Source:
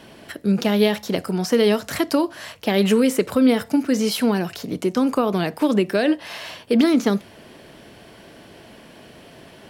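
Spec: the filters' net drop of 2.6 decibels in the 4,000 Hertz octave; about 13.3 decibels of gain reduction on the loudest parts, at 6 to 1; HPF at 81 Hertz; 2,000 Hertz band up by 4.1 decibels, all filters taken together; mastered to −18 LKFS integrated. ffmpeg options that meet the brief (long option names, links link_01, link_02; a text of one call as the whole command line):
ffmpeg -i in.wav -af "highpass=81,equalizer=frequency=2000:width_type=o:gain=6.5,equalizer=frequency=4000:width_type=o:gain=-6.5,acompressor=threshold=-27dB:ratio=6,volume=13dB" out.wav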